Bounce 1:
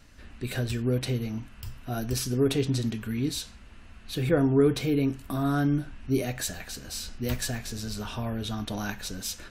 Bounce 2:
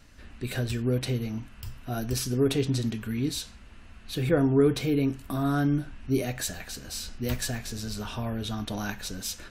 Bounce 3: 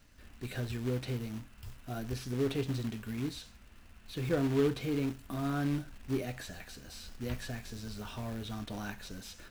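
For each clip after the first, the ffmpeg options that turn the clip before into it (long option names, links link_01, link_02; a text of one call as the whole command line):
ffmpeg -i in.wav -af anull out.wav
ffmpeg -i in.wav -filter_complex "[0:a]acrusher=bits=3:mode=log:mix=0:aa=0.000001,acrossover=split=3900[link_01][link_02];[link_02]acompressor=threshold=-42dB:ratio=4:attack=1:release=60[link_03];[link_01][link_03]amix=inputs=2:normalize=0,volume=-7.5dB" out.wav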